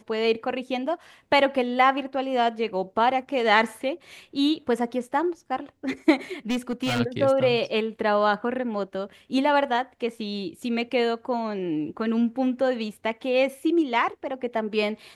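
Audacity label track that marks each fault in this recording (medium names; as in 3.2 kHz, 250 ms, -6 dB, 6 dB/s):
6.500000	7.010000	clipped -21.5 dBFS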